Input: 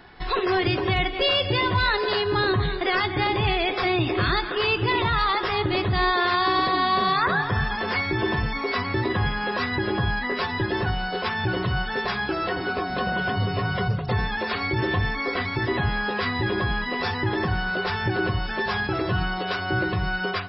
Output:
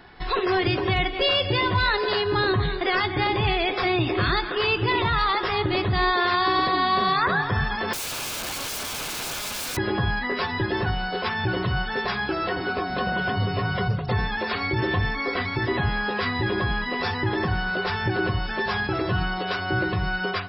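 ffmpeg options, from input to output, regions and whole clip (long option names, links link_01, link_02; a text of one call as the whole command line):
ffmpeg -i in.wav -filter_complex "[0:a]asettb=1/sr,asplit=3[link_01][link_02][link_03];[link_01]atrim=end=7.934[link_04];[link_02]atrim=start=7.93:end=9.77,asetpts=PTS-STARTPTS,afade=type=in:duration=0.004:curve=qsin,afade=type=out:start_time=1.836:duration=0.004:curve=qsin,aeval=exprs='(mod(20*val(0)+1,2)-1)/20':channel_layout=same,bandreject=frequency=1900:width=9.1[link_05];[link_03]atrim=start=9.766[link_06];[link_04][link_05]acrossfade=duration=0.004:curve1=hsin:curve2=qsin[link_07];[link_07][link_06]acrossfade=duration=0.004:curve1=qsin:curve2=hsin" out.wav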